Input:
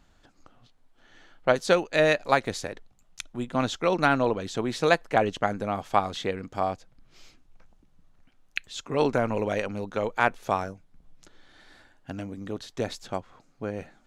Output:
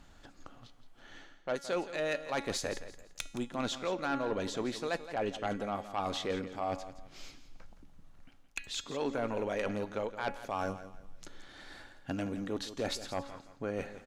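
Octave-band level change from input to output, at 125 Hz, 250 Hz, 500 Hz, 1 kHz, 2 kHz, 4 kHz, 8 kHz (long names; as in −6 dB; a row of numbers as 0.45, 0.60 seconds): −9.5, −7.0, −9.0, −10.5, −11.0, −5.0, −2.5 decibels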